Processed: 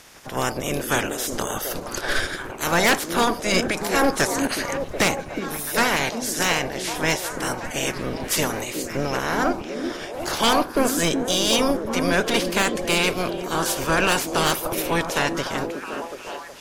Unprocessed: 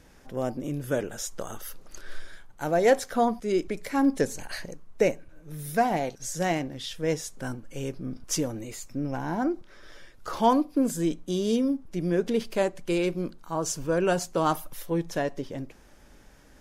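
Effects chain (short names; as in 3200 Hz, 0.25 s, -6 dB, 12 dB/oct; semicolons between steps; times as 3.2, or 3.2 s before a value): spectral limiter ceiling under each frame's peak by 25 dB; sine folder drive 9 dB, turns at -6.5 dBFS; delay with a stepping band-pass 0.368 s, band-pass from 290 Hz, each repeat 0.7 oct, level -2 dB; gain -6.5 dB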